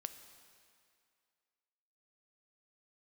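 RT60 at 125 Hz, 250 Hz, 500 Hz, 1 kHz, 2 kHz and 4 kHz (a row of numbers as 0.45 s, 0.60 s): 2.0 s, 2.1 s, 2.2 s, 2.3 s, 2.3 s, 2.1 s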